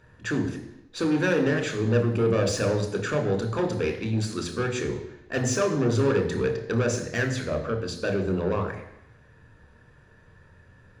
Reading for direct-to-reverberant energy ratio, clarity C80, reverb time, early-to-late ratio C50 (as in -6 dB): 3.5 dB, 10.0 dB, 0.85 s, 8.5 dB